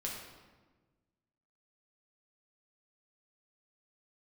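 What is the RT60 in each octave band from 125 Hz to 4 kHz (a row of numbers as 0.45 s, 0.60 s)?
1.8 s, 1.7 s, 1.4 s, 1.2 s, 1.1 s, 0.90 s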